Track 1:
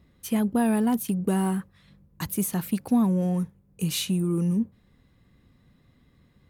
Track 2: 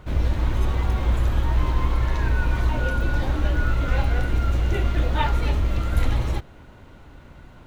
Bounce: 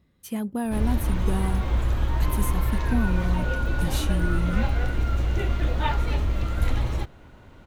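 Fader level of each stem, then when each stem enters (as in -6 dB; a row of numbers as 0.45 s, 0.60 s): -5.0 dB, -2.5 dB; 0.00 s, 0.65 s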